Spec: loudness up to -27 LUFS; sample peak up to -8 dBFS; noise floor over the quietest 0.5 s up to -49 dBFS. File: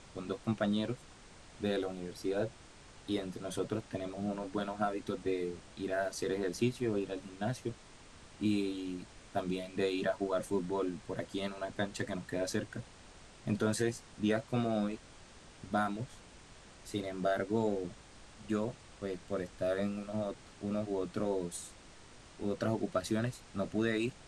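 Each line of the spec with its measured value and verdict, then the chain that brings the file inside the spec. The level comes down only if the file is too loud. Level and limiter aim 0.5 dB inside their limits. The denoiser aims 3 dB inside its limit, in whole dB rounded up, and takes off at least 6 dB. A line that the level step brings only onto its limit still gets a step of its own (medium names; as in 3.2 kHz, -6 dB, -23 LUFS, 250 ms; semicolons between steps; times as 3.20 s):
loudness -36.5 LUFS: pass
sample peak -19.0 dBFS: pass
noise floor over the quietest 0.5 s -55 dBFS: pass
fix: none needed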